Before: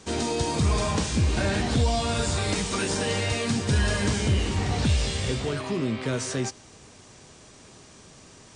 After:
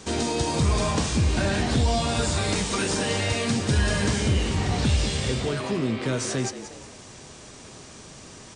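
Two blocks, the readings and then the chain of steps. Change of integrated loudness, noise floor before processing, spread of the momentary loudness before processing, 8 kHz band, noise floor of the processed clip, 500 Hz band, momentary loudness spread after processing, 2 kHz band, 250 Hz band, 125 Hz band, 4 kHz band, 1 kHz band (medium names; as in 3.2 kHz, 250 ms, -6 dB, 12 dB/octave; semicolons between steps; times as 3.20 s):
+1.5 dB, -50 dBFS, 4 LU, +2.0 dB, -45 dBFS, +1.0 dB, 20 LU, +1.5 dB, +1.5 dB, +1.0 dB, +1.5 dB, +1.5 dB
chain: resampled via 22.05 kHz; de-hum 93.78 Hz, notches 34; frequency-shifting echo 180 ms, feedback 32%, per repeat +86 Hz, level -14 dB; in parallel at -1 dB: compression, threshold -38 dBFS, peak gain reduction 18.5 dB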